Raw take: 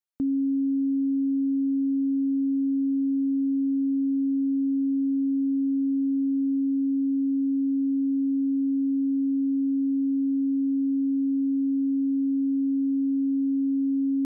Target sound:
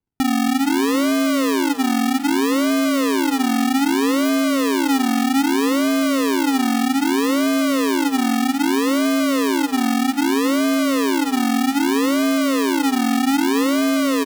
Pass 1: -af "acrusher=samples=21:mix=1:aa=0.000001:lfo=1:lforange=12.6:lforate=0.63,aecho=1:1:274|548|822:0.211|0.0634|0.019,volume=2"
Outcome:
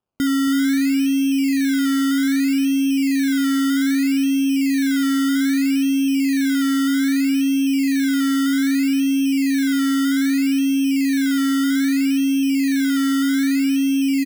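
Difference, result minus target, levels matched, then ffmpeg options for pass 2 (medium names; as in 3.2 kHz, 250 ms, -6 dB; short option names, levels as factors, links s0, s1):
decimation with a swept rate: distortion -19 dB
-af "acrusher=samples=68:mix=1:aa=0.000001:lfo=1:lforange=40.8:lforate=0.63,aecho=1:1:274|548|822:0.211|0.0634|0.019,volume=2"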